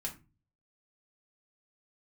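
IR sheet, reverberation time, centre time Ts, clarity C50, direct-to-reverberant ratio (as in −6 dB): 0.30 s, 13 ms, 12.5 dB, −1.5 dB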